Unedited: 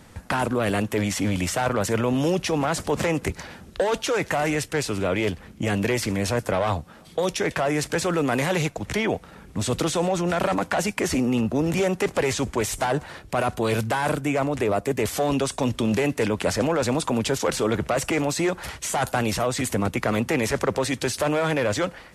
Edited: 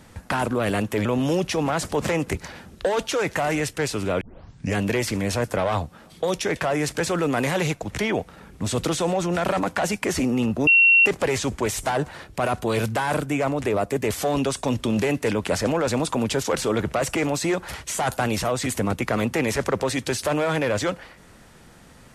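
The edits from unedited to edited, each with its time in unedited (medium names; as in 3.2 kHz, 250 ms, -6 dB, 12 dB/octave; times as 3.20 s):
1.05–2.00 s: delete
5.16 s: tape start 0.55 s
11.62–12.01 s: bleep 2.73 kHz -11.5 dBFS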